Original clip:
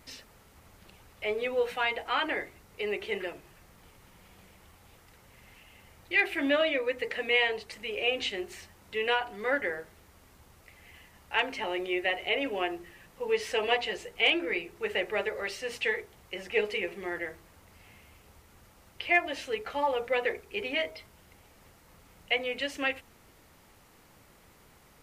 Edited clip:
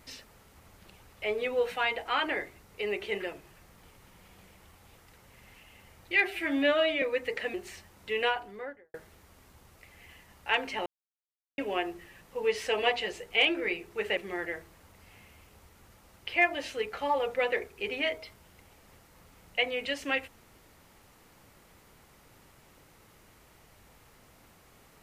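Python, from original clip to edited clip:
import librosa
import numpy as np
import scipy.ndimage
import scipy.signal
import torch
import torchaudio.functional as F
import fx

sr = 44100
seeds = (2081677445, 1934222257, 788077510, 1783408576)

y = fx.studio_fade_out(x, sr, start_s=9.05, length_s=0.74)
y = fx.edit(y, sr, fx.stretch_span(start_s=6.24, length_s=0.52, factor=1.5),
    fx.cut(start_s=7.28, length_s=1.11),
    fx.silence(start_s=11.71, length_s=0.72),
    fx.cut(start_s=15.02, length_s=1.88), tone=tone)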